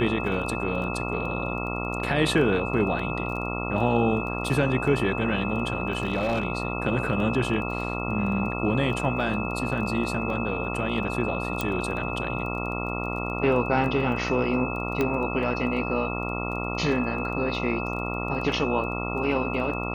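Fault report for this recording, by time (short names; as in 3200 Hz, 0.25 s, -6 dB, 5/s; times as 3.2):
buzz 60 Hz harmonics 23 -31 dBFS
crackle 12/s -34 dBFS
tone 2600 Hz -33 dBFS
5.92–6.44 clipped -19.5 dBFS
11.61 pop
15.01 pop -12 dBFS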